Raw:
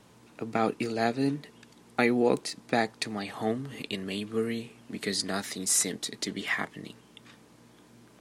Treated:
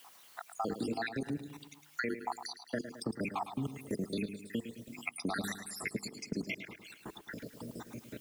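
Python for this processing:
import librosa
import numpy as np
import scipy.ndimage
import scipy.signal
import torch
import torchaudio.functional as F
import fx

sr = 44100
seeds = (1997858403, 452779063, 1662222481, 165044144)

y = fx.spec_dropout(x, sr, seeds[0], share_pct=77)
y = fx.high_shelf(y, sr, hz=5600.0, db=6.0)
y = fx.hum_notches(y, sr, base_hz=50, count=9)
y = fx.level_steps(y, sr, step_db=21)
y = fx.dmg_noise_colour(y, sr, seeds[1], colour='blue', level_db=-75.0)
y = fx.high_shelf(y, sr, hz=2800.0, db=-10.0)
y = fx.echo_feedback(y, sr, ms=107, feedback_pct=40, wet_db=-11.5)
y = fx.band_squash(y, sr, depth_pct=70)
y = y * librosa.db_to_amplitude(8.5)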